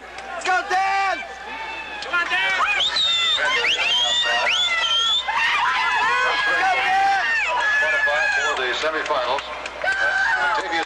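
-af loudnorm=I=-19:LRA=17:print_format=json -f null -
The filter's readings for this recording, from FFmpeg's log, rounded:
"input_i" : "-19.1",
"input_tp" : "-12.4",
"input_lra" : "3.1",
"input_thresh" : "-29.2",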